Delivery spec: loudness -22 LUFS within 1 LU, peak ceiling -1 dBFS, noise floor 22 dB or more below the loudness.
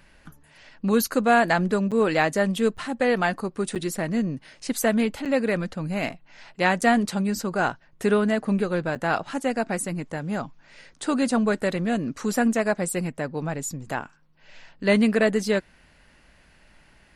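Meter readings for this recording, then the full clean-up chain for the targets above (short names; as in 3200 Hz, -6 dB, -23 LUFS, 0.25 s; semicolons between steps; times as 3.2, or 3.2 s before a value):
dropouts 6; longest dropout 7.2 ms; loudness -24.5 LUFS; peak -6.0 dBFS; loudness target -22.0 LUFS
-> interpolate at 1.91/2.77/3.75/5.25/6.81/8.95, 7.2 ms; gain +2.5 dB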